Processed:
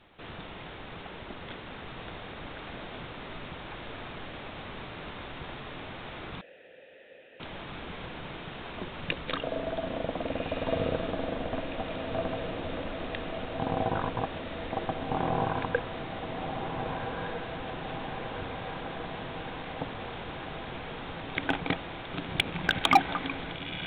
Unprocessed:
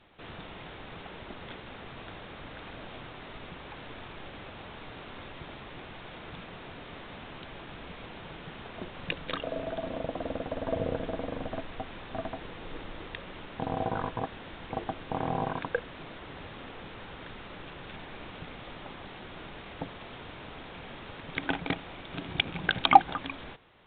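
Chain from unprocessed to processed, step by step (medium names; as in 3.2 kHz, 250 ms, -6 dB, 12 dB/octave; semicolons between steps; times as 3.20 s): on a send: echo that smears into a reverb 1506 ms, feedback 69%, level -5 dB; on the sum: overload inside the chain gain 14 dB; 6.41–7.40 s: vowel filter e; trim +1.5 dB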